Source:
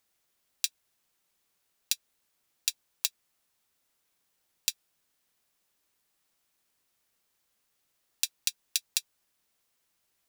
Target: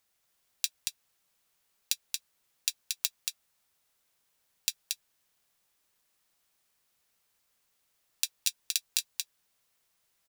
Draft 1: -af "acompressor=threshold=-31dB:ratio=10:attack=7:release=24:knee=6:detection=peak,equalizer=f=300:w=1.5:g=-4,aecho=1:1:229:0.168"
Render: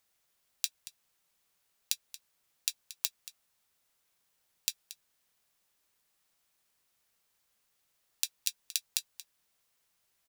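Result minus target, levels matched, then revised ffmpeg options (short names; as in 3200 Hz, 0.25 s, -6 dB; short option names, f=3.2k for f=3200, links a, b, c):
echo-to-direct -11.5 dB; compressor: peak gain reduction +5 dB
-af "acompressor=threshold=-24.5dB:ratio=10:attack=7:release=24:knee=6:detection=peak,equalizer=f=300:w=1.5:g=-4,aecho=1:1:229:0.631"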